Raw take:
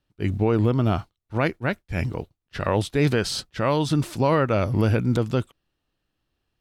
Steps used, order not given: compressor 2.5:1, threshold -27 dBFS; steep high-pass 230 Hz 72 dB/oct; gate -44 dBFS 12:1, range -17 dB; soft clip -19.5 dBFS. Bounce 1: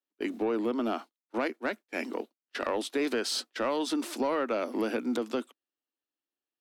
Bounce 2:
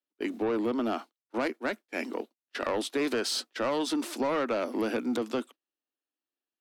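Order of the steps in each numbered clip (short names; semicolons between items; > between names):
steep high-pass > compressor > soft clip > gate; steep high-pass > soft clip > gate > compressor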